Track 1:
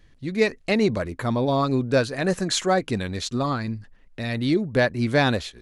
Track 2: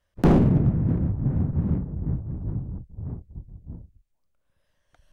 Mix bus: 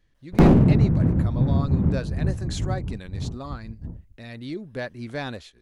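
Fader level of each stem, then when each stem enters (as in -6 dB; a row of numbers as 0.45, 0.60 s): -11.5, +3.0 dB; 0.00, 0.15 s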